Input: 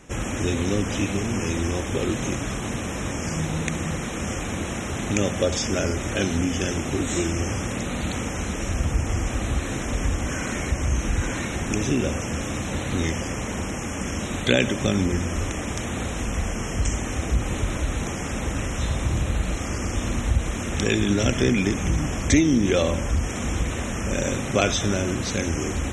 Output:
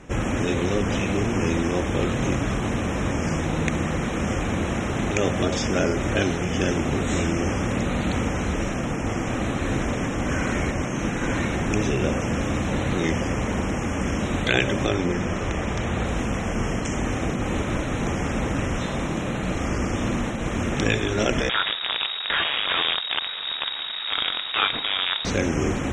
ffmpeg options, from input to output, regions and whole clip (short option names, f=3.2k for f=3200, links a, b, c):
-filter_complex "[0:a]asettb=1/sr,asplit=3[a][b][c];[a]atrim=end=14.864[d];[b]atrim=start=14.86:end=16.06,asetpts=PTS-STARTPTS,afade=t=in:d=0.004:c=qsin,afade=t=out:st=1.196:d=0.004:c=qsin,acrossover=split=7200[e][f];[f]acompressor=threshold=-50dB:ratio=4:attack=1:release=60[g];[e][g]amix=inputs=2:normalize=0,equalizer=f=270:w=5.1:g=-7.5[h];[c]atrim=start=16.056[i];[d][h]acrossfade=d=0.004:c1=hsin:c2=qsin[j];[j][i]acrossfade=d=0.004:c1=qsin:c2=hsin,asettb=1/sr,asplit=3[k][l][m];[k]atrim=end=21.494[n];[l]atrim=start=21.49:end=25.25,asetpts=PTS-STARTPTS,afade=t=in:d=0.004:c=qsin,afade=t=out:st=3.756:d=0.004:c=qsin,acrusher=bits=4:dc=4:mix=0:aa=0.000001,lowpass=f=3.2k:t=q:w=0.5098,lowpass=f=3.2k:t=q:w=0.6013,lowpass=f=3.2k:t=q:w=0.9,lowpass=f=3.2k:t=q:w=2.563,afreqshift=-3800[o];[m]atrim=start=25.246[p];[n][o]acrossfade=d=0.004:c1=hsin:c2=qsin[q];[q][p]acrossfade=d=0.004:c1=qsin:c2=hsin,afftfilt=real='re*lt(hypot(re,im),0.447)':imag='im*lt(hypot(re,im),0.447)':win_size=1024:overlap=0.75,lowpass=f=2.4k:p=1,volume=4.5dB"